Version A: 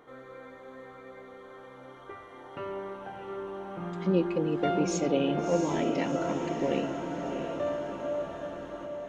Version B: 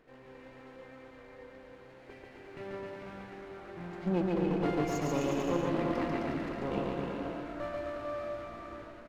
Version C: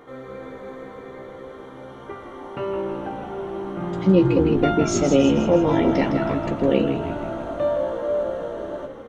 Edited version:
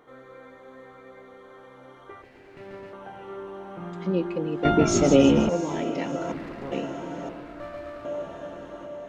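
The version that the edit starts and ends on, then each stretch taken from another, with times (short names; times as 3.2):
A
2.22–2.93 from B
4.65–5.49 from C
6.32–6.72 from B
7.29–8.05 from B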